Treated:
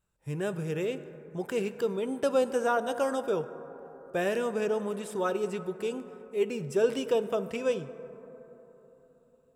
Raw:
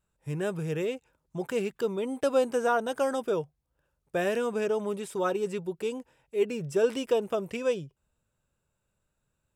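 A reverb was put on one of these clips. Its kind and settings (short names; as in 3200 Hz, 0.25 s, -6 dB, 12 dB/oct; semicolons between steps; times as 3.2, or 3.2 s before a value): plate-style reverb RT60 3.9 s, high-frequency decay 0.25×, DRR 11.5 dB; gain -1 dB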